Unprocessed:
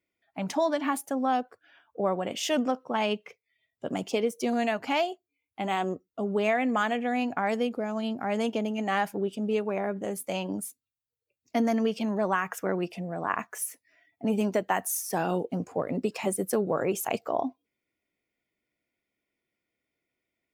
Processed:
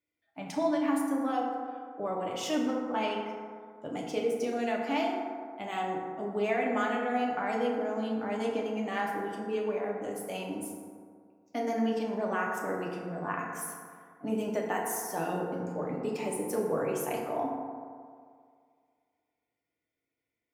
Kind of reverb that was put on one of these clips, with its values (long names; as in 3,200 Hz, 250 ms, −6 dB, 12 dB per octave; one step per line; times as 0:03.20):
feedback delay network reverb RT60 2.1 s, low-frequency decay 0.9×, high-frequency decay 0.35×, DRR −2.5 dB
level −8 dB